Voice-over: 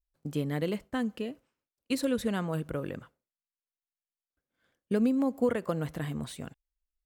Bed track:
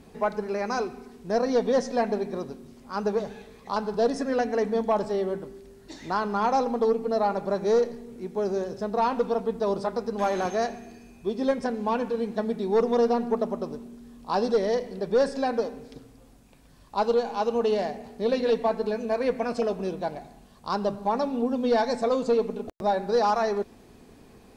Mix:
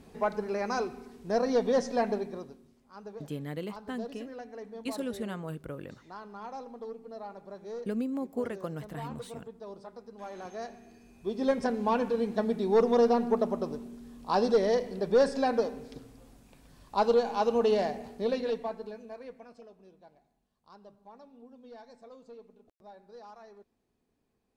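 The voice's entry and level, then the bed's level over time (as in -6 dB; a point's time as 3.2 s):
2.95 s, -6.0 dB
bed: 2.11 s -3 dB
2.88 s -18 dB
10.19 s -18 dB
11.6 s -1 dB
18.05 s -1 dB
19.71 s -26.5 dB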